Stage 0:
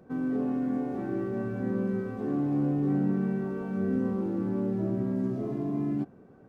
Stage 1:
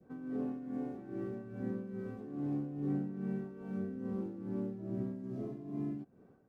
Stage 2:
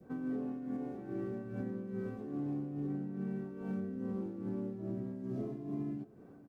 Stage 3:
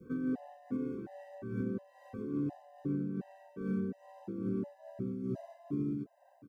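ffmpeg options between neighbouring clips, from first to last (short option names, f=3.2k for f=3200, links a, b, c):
-af "adynamicequalizer=threshold=0.00355:dfrequency=1100:dqfactor=0.8:tfrequency=1100:tqfactor=0.8:attack=5:release=100:ratio=0.375:range=2:mode=cutabove:tftype=bell,tremolo=f=2.4:d=0.65,volume=-6.5dB"
-af "alimiter=level_in=11.5dB:limit=-24dB:level=0:latency=1:release=458,volume=-11.5dB,aecho=1:1:625:0.0891,volume=5.5dB"
-af "afftfilt=real='re*gt(sin(2*PI*1.4*pts/sr)*(1-2*mod(floor(b*sr/1024/520),2)),0)':imag='im*gt(sin(2*PI*1.4*pts/sr)*(1-2*mod(floor(b*sr/1024/520),2)),0)':win_size=1024:overlap=0.75,volume=4dB"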